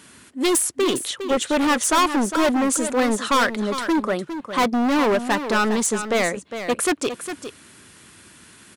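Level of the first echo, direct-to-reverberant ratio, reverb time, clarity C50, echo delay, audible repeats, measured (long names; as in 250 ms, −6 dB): −10.0 dB, no reverb audible, no reverb audible, no reverb audible, 407 ms, 1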